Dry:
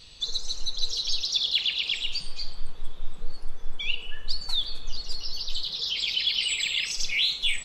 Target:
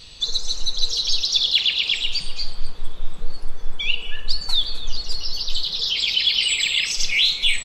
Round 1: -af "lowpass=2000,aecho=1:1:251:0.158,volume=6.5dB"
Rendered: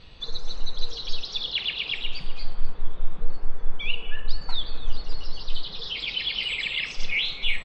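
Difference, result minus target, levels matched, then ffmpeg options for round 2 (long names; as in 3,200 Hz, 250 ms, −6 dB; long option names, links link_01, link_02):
2,000 Hz band +5.0 dB
-af "aecho=1:1:251:0.158,volume=6.5dB"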